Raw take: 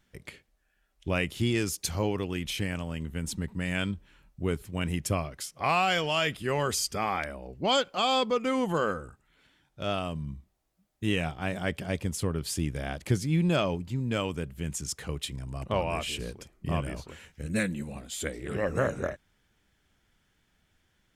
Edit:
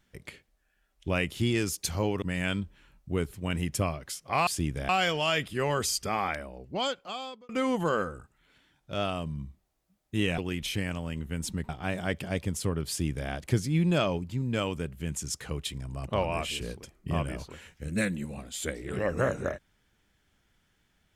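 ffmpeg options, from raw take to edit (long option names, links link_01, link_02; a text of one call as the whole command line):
ffmpeg -i in.wav -filter_complex "[0:a]asplit=7[link_01][link_02][link_03][link_04][link_05][link_06][link_07];[link_01]atrim=end=2.222[link_08];[link_02]atrim=start=3.528:end=5.782[link_09];[link_03]atrim=start=12.458:end=12.882[link_10];[link_04]atrim=start=5.778:end=8.38,asetpts=PTS-STARTPTS,afade=type=out:start_time=1.422:duration=1.18[link_11];[link_05]atrim=start=8.38:end=11.272,asetpts=PTS-STARTPTS,afade=type=in:duration=0.004:curve=hsin[link_12];[link_06]atrim=start=2.218:end=3.532[link_13];[link_07]atrim=start=11.268[link_14];[link_08][link_09]acrossfade=duration=0.004:curve1=hsin:curve2=hsin[link_15];[link_15][link_10]acrossfade=duration=0.004:curve1=hsin:curve2=hsin[link_16];[link_11][link_12]concat=n=2:v=0:a=1[link_17];[link_16][link_17]acrossfade=duration=0.004:curve1=hsin:curve2=hsin[link_18];[link_18][link_13]acrossfade=duration=0.004:curve1=hsin:curve2=hsin[link_19];[link_19][link_14]acrossfade=duration=0.004:curve1=hsin:curve2=hsin" out.wav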